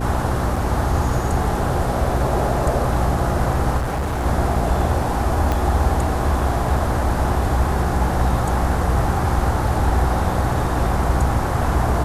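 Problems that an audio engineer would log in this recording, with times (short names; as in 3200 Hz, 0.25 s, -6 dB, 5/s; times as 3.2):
hum 60 Hz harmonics 6 -24 dBFS
0.56 gap 3.6 ms
3.77–4.26 clipped -19 dBFS
5.52 pop -8 dBFS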